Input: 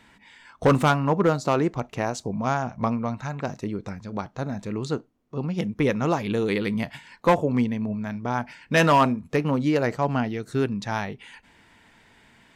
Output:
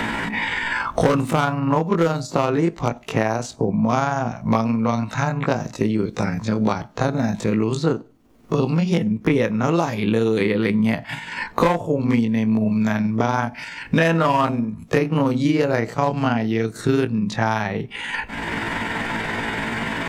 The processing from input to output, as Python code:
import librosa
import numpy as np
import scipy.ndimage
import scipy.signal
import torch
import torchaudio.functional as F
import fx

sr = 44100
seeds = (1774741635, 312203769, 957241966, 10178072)

y = fx.stretch_grains(x, sr, factor=1.6, grain_ms=96.0)
y = fx.band_squash(y, sr, depth_pct=100)
y = y * librosa.db_to_amplitude(5.0)